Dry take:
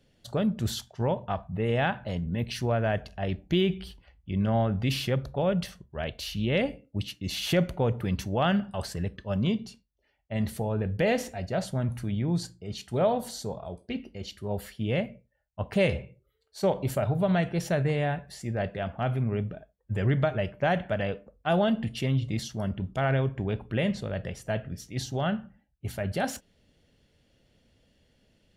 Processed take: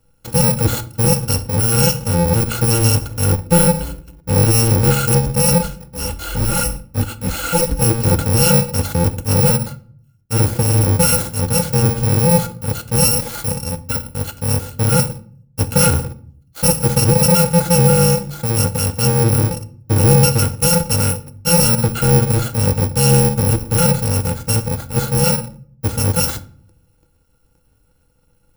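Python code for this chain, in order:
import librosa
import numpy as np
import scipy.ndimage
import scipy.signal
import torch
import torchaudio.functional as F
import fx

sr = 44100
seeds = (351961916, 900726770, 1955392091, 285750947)

y = fx.bit_reversed(x, sr, seeds[0], block=128)
y = fx.low_shelf(y, sr, hz=210.0, db=11.0)
y = fx.leveller(y, sr, passes=2)
y = fx.small_body(y, sr, hz=(340.0, 500.0, 850.0, 1400.0), ring_ms=70, db=16)
y = fx.chorus_voices(y, sr, voices=6, hz=1.1, base_ms=19, depth_ms=3.0, mix_pct=60, at=(5.58, 7.82))
y = fx.room_shoebox(y, sr, seeds[1], volume_m3=730.0, walls='furnished', distance_m=0.6)
y = y * 10.0 ** (2.5 / 20.0)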